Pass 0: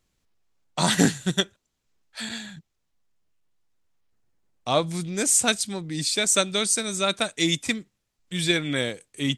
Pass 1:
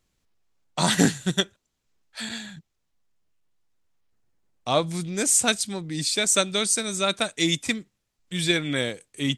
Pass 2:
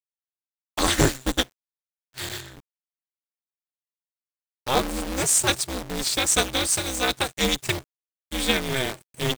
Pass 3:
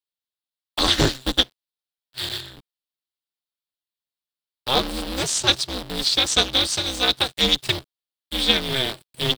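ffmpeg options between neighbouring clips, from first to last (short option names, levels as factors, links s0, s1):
-af anull
-af "acrusher=bits=6:dc=4:mix=0:aa=0.000001,aeval=exprs='val(0)*sgn(sin(2*PI*130*n/s))':c=same"
-filter_complex "[0:a]acrossover=split=280|4800[s0][s1][s2];[s1]aexciter=amount=4.5:drive=4.5:freq=3200[s3];[s2]acompressor=threshold=0.0178:ratio=6[s4];[s0][s3][s4]amix=inputs=3:normalize=0"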